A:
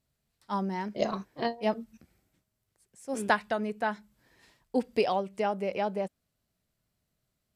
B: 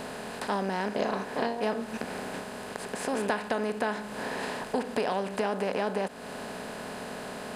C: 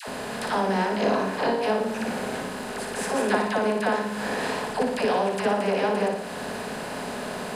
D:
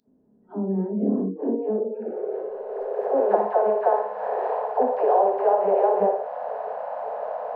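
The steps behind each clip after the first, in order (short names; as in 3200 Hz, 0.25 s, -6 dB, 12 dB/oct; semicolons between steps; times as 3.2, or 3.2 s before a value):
per-bin compression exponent 0.4; compressor 2.5:1, threshold -37 dBFS, peak gain reduction 14 dB; gain +5.5 dB
dispersion lows, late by 82 ms, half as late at 650 Hz; on a send: flutter echo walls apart 9.9 m, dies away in 0.64 s; on the sum: gain +4.5 dB
low-pass sweep 290 Hz -> 740 Hz, 1.29–3.6; pre-echo 0.278 s -14 dB; spectral noise reduction 29 dB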